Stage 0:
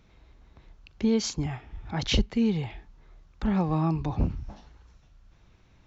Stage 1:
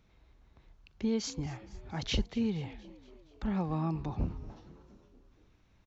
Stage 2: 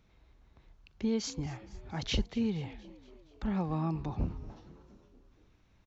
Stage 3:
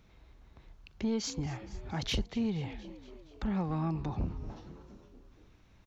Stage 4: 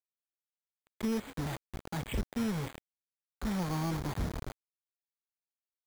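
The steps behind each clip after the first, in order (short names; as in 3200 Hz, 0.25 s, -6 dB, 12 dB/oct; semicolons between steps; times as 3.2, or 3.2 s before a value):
frequency-shifting echo 0.235 s, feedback 59%, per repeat +50 Hz, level -20 dB; gain -7 dB
nothing audible
in parallel at +2 dB: compressor, threshold -38 dBFS, peak gain reduction 13 dB; on the sum: soft clip -20.5 dBFS, distortion -20 dB; gain -2.5 dB
requantised 6-bit, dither none; careless resampling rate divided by 8×, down filtered, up hold; gain -1 dB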